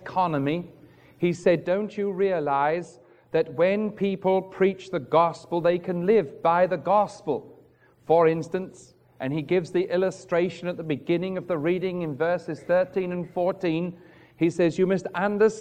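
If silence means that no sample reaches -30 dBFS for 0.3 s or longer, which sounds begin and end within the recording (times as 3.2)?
1.23–2.82
3.34–7.38
8.09–8.65
9.21–13.9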